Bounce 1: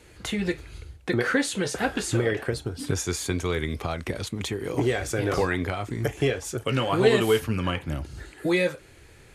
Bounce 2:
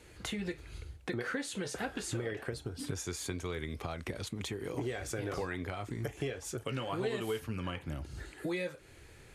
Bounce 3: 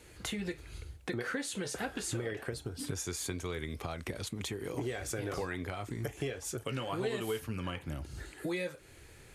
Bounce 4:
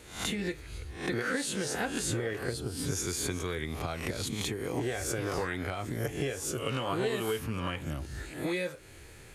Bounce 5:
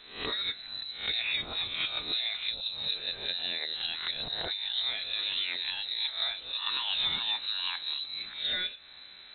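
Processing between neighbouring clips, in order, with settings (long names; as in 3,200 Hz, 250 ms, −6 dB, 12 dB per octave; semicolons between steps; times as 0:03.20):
downward compressor 2.5 to 1, threshold −33 dBFS, peak gain reduction 13 dB; level −4 dB
high-shelf EQ 7,700 Hz +6 dB
peak hold with a rise ahead of every peak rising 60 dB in 0.47 s; level +2.5 dB
voice inversion scrambler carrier 4,000 Hz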